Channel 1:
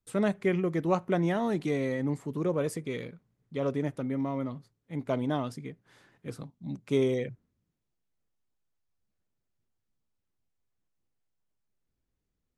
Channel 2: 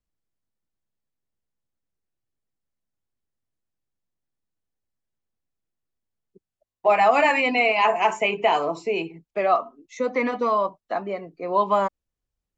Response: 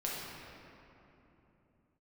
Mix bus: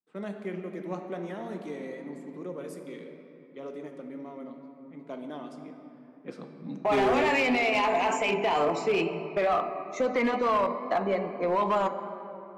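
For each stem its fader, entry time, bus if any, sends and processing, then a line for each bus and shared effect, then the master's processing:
5.89 s -13 dB -> 6.35 s -1.5 dB, 0.00 s, send -4 dB, level-controlled noise filter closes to 1.3 kHz, open at -27.5 dBFS; steep high-pass 180 Hz 36 dB/octave
+0.5 dB, 0.00 s, send -10 dB, expander -39 dBFS; peak limiter -18.5 dBFS, peak gain reduction 11 dB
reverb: on, RT60 3.2 s, pre-delay 6 ms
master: overload inside the chain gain 18.5 dB; wow and flutter 28 cents; saturation -16 dBFS, distortion -25 dB

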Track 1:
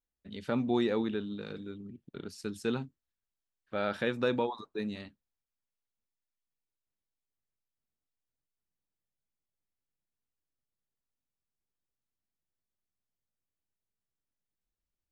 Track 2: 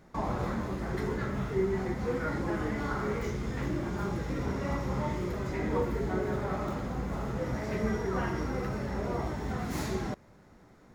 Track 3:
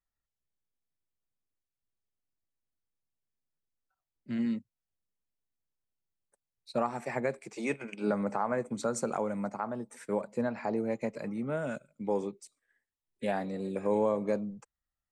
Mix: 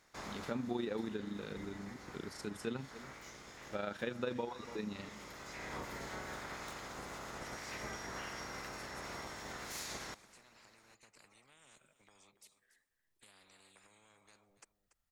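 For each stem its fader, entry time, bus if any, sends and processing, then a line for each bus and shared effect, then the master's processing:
+1.0 dB, 0.00 s, no send, echo send -19.5 dB, AM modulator 25 Hz, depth 40%
-14.0 dB, 0.00 s, no send, echo send -22.5 dB, spectral peaks clipped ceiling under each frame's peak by 20 dB; peaking EQ 6.8 kHz +8 dB 2.8 oct; auto duck -8 dB, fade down 1.30 s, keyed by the first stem
-13.5 dB, 0.00 s, no send, echo send -14 dB, compression, threshold -37 dBFS, peak gain reduction 13 dB; spectrum-flattening compressor 10:1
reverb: none
echo: delay 286 ms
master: compression 2:1, threshold -40 dBFS, peak gain reduction 8.5 dB

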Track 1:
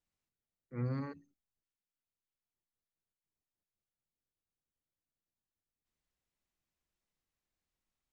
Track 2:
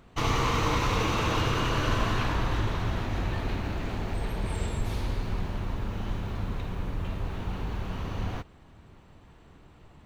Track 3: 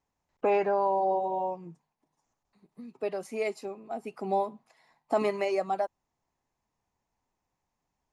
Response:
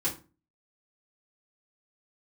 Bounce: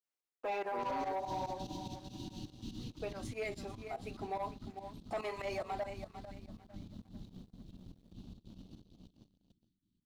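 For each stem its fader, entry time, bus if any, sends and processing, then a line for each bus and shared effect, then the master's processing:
-0.5 dB, 0.00 s, no send, no echo send, high-pass 300 Hz 24 dB/octave
-14.0 dB, 0.65 s, send -19.5 dB, echo send -3 dB, trance gate "..x.x..xxx.xx.x." 175 bpm -12 dB; inverse Chebyshev band-stop 550–2000 Hz, stop band 50 dB; three-band isolator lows -17 dB, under 190 Hz, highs -13 dB, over 4 kHz
-8.5 dB, 0.00 s, send -15.5 dB, echo send -12.5 dB, frequency weighting A; expander -55 dBFS; flange 0.7 Hz, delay 1.9 ms, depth 9.3 ms, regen +34%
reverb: on, RT60 0.35 s, pre-delay 3 ms
echo: feedback delay 448 ms, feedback 28%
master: waveshaping leveller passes 2; volume shaper 144 bpm, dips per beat 2, -14 dB, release 82 ms; peak limiter -31.5 dBFS, peak gain reduction 5 dB

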